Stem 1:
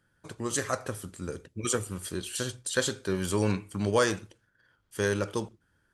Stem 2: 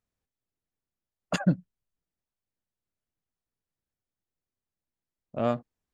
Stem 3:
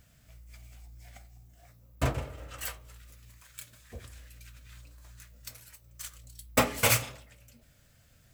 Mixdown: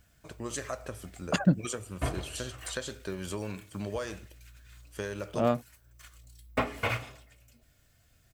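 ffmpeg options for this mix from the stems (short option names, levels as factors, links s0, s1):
-filter_complex "[0:a]equalizer=f=630:t=o:w=0.33:g=7,equalizer=f=2500:t=o:w=0.33:g=5,equalizer=f=10000:t=o:w=0.33:g=-6,acompressor=threshold=0.0398:ratio=6,volume=0.631[s0];[1:a]volume=1.06[s1];[2:a]aecho=1:1:2.8:0.33,acrossover=split=3200[s2][s3];[s3]acompressor=threshold=0.00282:ratio=4:attack=1:release=60[s4];[s2][s4]amix=inputs=2:normalize=0,volume=0.668[s5];[s0][s1][s5]amix=inputs=3:normalize=0"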